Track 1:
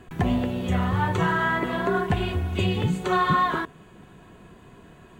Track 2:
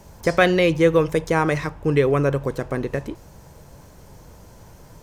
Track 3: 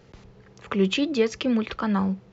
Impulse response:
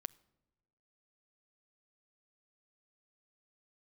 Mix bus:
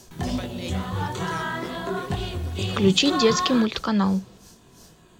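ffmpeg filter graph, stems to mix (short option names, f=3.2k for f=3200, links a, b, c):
-filter_complex "[0:a]flanger=delay=17.5:depth=6.8:speed=2.2,volume=-1.5dB[a];[1:a]equalizer=f=5.4k:w=0.3:g=9.5,acompressor=threshold=-29dB:ratio=2,aeval=exprs='val(0)*pow(10,-20*(0.5-0.5*cos(2*PI*2.9*n/s))/20)':c=same,volume=-10dB[b];[2:a]adelay=2050,volume=2.5dB[c];[a][b][c]amix=inputs=3:normalize=0,highshelf=f=3.1k:t=q:w=1.5:g=8"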